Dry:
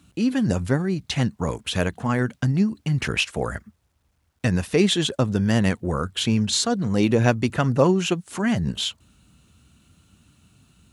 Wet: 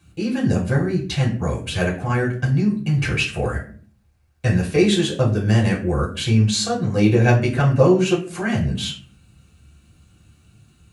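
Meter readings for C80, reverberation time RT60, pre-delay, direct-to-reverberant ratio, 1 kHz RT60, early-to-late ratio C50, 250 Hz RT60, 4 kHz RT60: 14.0 dB, 0.45 s, 3 ms, -3.5 dB, 0.40 s, 9.5 dB, 0.70 s, 0.30 s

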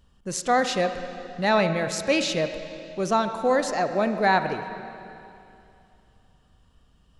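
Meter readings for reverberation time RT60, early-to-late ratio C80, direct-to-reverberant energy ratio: 2.7 s, 9.0 dB, 8.0 dB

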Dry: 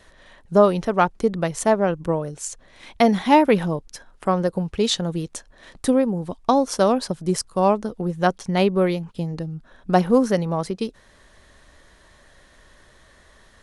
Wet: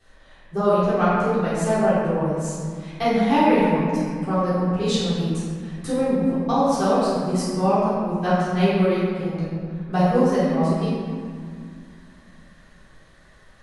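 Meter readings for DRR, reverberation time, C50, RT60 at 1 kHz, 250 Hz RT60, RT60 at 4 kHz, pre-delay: -14.0 dB, 2.1 s, -3.5 dB, 2.1 s, 3.1 s, 1.3 s, 3 ms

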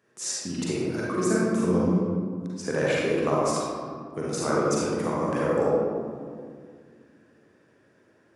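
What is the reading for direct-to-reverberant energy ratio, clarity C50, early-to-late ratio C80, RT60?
-5.5 dB, -3.0 dB, 0.0 dB, 2.1 s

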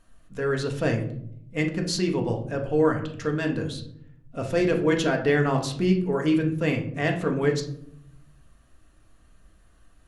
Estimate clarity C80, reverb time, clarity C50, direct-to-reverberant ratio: 13.5 dB, 0.70 s, 9.0 dB, 2.0 dB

